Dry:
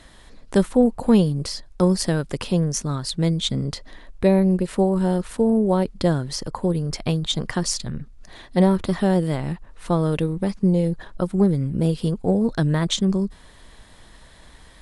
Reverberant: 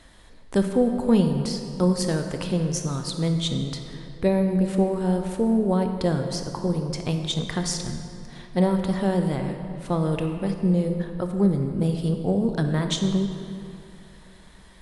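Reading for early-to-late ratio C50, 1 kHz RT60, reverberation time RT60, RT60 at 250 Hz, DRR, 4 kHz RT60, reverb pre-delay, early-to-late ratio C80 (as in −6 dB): 6.0 dB, 2.6 s, 2.6 s, 2.6 s, 5.0 dB, 1.7 s, 20 ms, 7.0 dB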